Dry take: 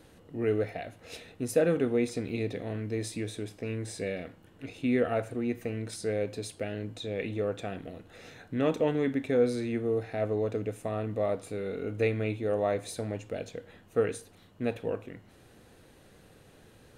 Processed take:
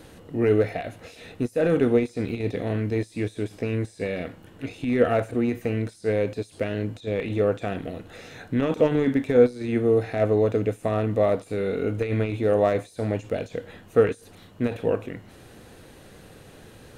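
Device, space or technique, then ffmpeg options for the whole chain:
de-esser from a sidechain: -filter_complex "[0:a]asplit=2[s0][s1];[s1]highpass=f=4100:w=0.5412,highpass=f=4100:w=1.3066,apad=whole_len=748381[s2];[s0][s2]sidechaincompress=threshold=0.00126:ratio=20:attack=0.99:release=27,volume=2.82"

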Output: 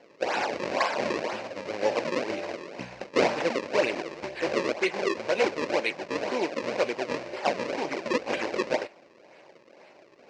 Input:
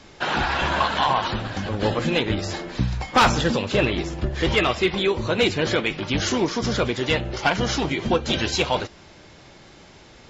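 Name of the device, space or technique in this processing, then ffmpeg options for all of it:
circuit-bent sampling toy: -af "acrusher=samples=34:mix=1:aa=0.000001:lfo=1:lforange=54.4:lforate=2,highpass=410,equalizer=f=560:t=q:w=4:g=6,equalizer=f=1300:t=q:w=4:g=-7,equalizer=f=2400:t=q:w=4:g=4,equalizer=f=3400:t=q:w=4:g=-8,lowpass=f=5500:w=0.5412,lowpass=f=5500:w=1.3066,volume=0.708"

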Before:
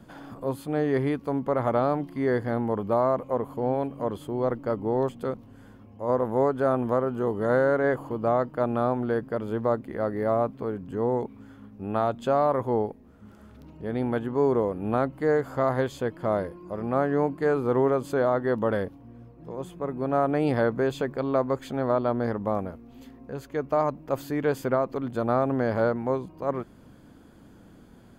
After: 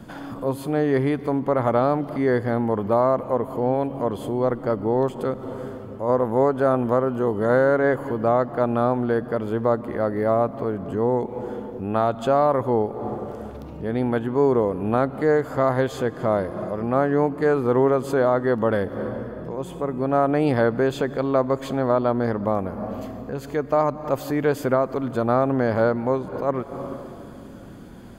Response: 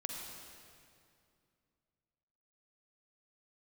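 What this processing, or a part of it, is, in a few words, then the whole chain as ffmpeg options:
ducked reverb: -filter_complex "[0:a]asplit=3[s0][s1][s2];[1:a]atrim=start_sample=2205[s3];[s1][s3]afir=irnorm=-1:irlink=0[s4];[s2]apad=whole_len=1243104[s5];[s4][s5]sidechaincompress=threshold=0.00708:ratio=8:attack=24:release=144,volume=1[s6];[s0][s6]amix=inputs=2:normalize=0,asettb=1/sr,asplit=3[s7][s8][s9];[s7]atrim=end=22.684[s10];[s8]atrim=start=22.68:end=23.31,asetpts=PTS-STARTPTS,afade=t=in:d=0.004:c=qsin,afade=t=out:st=0.626:d=0.004:c=qsin,equalizer=f=3600:t=o:w=0.22:g=-6[s11];[s9]atrim=start=23.306[s12];[s10][s11]acrossfade=d=0.004:c1=hsin:c2=qsin[s13];[s13][s12]acrossfade=d=0.004:c1=qsin:c2=hsin,volume=1.5"

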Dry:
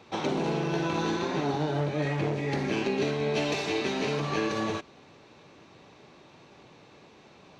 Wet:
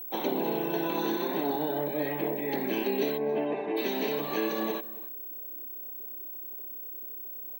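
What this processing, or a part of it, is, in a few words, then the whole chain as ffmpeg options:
old television with a line whistle: -filter_complex "[0:a]highpass=f=210:w=0.5412,highpass=f=210:w=1.3066,equalizer=f=1300:t=q:w=4:g=-9,equalizer=f=2400:t=q:w=4:g=-4,equalizer=f=5000:t=q:w=4:g=-6,lowpass=f=7600:w=0.5412,lowpass=f=7600:w=1.3066,aeval=exprs='val(0)+0.0141*sin(2*PI*15734*n/s)':c=same,asplit=3[s0][s1][s2];[s0]afade=t=out:st=3.17:d=0.02[s3];[s1]lowpass=1600,afade=t=in:st=3.17:d=0.02,afade=t=out:st=3.76:d=0.02[s4];[s2]afade=t=in:st=3.76:d=0.02[s5];[s3][s4][s5]amix=inputs=3:normalize=0,afftdn=nr=14:nf=-47,asplit=2[s6][s7];[s7]adelay=274.1,volume=0.112,highshelf=f=4000:g=-6.17[s8];[s6][s8]amix=inputs=2:normalize=0"

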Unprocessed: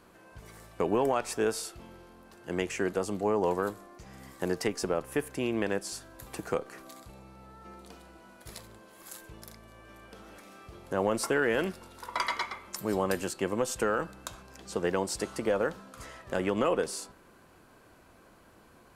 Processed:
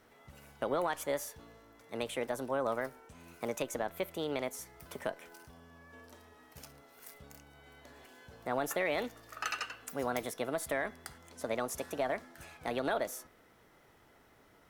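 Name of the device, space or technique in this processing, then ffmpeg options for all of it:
nightcore: -af "asetrate=56889,aresample=44100,volume=0.531"

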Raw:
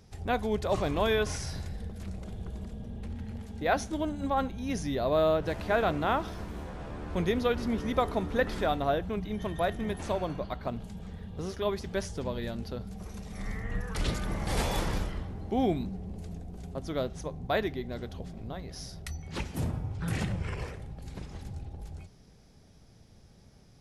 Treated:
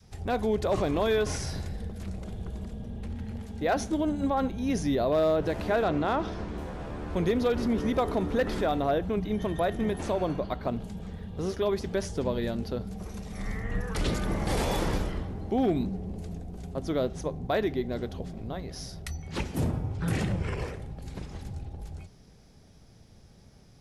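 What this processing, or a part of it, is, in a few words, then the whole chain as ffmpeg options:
clipper into limiter: -filter_complex "[0:a]asettb=1/sr,asplit=3[s0][s1][s2];[s0]atrim=end=5.844[s3];[s1]atrim=start=5.84:end=6.58,asetpts=PTS-STARTPTS,afade=t=in:d=0.004:c=qsin,afade=t=out:st=0.736:d=0.004:c=qsin,lowpass=6000[s4];[s2]atrim=start=6.576[s5];[s3][s4]acrossfade=d=0.004:c1=hsin:c2=qsin[s6];[s6][s5]acrossfade=d=0.004:c1=qsin:c2=hsin,adynamicequalizer=threshold=0.00891:dfrequency=360:dqfactor=0.72:tfrequency=360:tqfactor=0.72:attack=5:release=100:ratio=0.375:range=2.5:mode=boostabove:tftype=bell,asoftclip=type=hard:threshold=0.15,alimiter=limit=0.0944:level=0:latency=1:release=46,volume=1.26"

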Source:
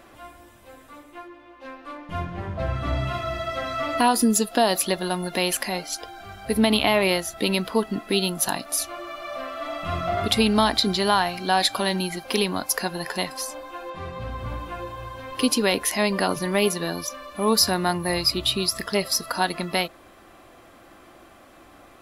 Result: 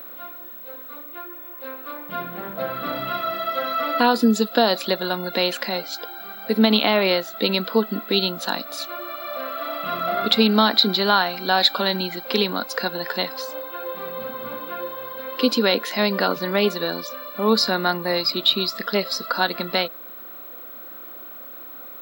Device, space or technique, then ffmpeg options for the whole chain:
old television with a line whistle: -af "highpass=f=180:w=0.5412,highpass=f=180:w=1.3066,equalizer=f=220:t=q:w=4:g=5,equalizer=f=500:t=q:w=4:g=8,equalizer=f=1400:t=q:w=4:g=9,equalizer=f=3900:t=q:w=4:g=9,equalizer=f=6000:t=q:w=4:g=-7,lowpass=f=6600:w=0.5412,lowpass=f=6600:w=1.3066,aeval=exprs='val(0)+0.0178*sin(2*PI*15734*n/s)':c=same,volume=0.891"

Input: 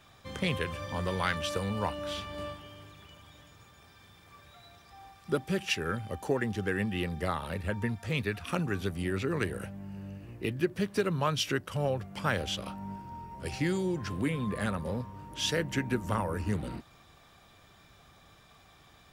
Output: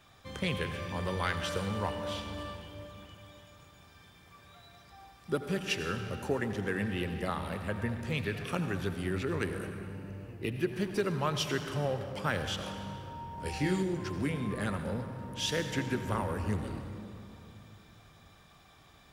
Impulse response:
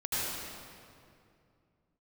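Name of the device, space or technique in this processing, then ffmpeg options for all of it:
saturated reverb return: -filter_complex "[0:a]asplit=2[s0][s1];[1:a]atrim=start_sample=2205[s2];[s1][s2]afir=irnorm=-1:irlink=0,asoftclip=type=tanh:threshold=0.0944,volume=0.282[s3];[s0][s3]amix=inputs=2:normalize=0,asettb=1/sr,asplit=3[s4][s5][s6];[s4]atrim=end=13.354[s7];[s5]atrim=start=13.35:end=13.83,asetpts=PTS-STARTPTS,afade=t=in:d=0.004:c=qsin,afade=t=out:st=0.476:d=0.004:c=qsin,asplit=2[s8][s9];[s9]adelay=27,volume=0.668[s10];[s8][s10]amix=inputs=2:normalize=0,atrim=end_sample=21168[s11];[s6]atrim=start=13.826[s12];[s7][s11]acrossfade=d=0.004:c1=hsin:c2=qsin[s13];[s13][s12]acrossfade=d=0.004:c1=qsin:c2=hsin,volume=0.668"

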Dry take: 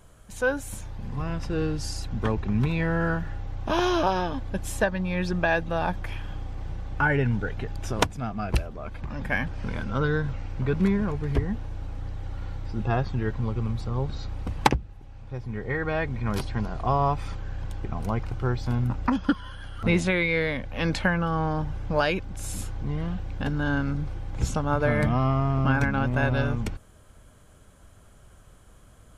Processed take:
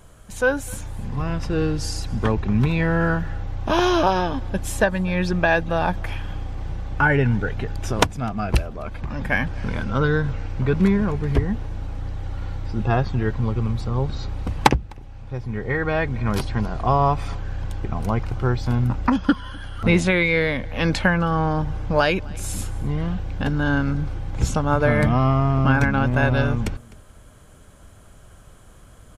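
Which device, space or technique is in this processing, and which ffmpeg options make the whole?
ducked delay: -filter_complex "[0:a]asplit=3[s0][s1][s2];[s1]adelay=254,volume=0.355[s3];[s2]apad=whole_len=1297693[s4];[s3][s4]sidechaincompress=threshold=0.00891:ratio=6:attack=6:release=548[s5];[s0][s5]amix=inputs=2:normalize=0,volume=1.78"

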